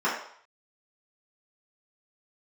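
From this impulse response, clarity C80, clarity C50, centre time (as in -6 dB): 7.5 dB, 4.0 dB, 39 ms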